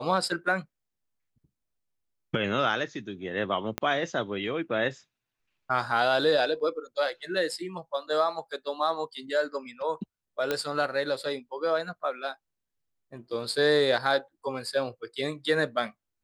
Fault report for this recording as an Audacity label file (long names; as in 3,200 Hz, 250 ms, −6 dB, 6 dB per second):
3.780000	3.780000	click −13 dBFS
10.510000	10.510000	click −13 dBFS